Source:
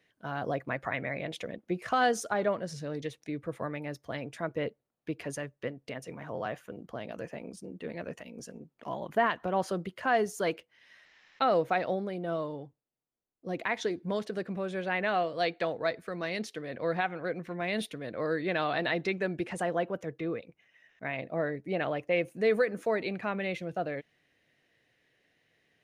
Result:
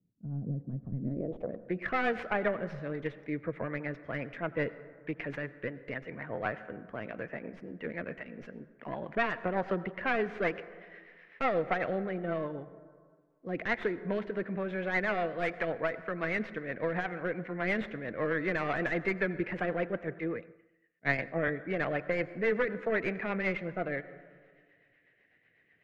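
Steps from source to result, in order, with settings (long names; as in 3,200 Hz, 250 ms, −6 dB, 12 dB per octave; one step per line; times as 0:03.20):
stylus tracing distortion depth 0.32 ms
brickwall limiter −21.5 dBFS, peak gain reduction 6 dB
low-pass filter sweep 190 Hz → 2,000 Hz, 0:00.97–0:01.77
rotating-speaker cabinet horn 8 Hz
convolution reverb RT60 1.8 s, pre-delay 78 ms, DRR 15 dB
0:20.19–0:21.48: multiband upward and downward expander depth 100%
level +1 dB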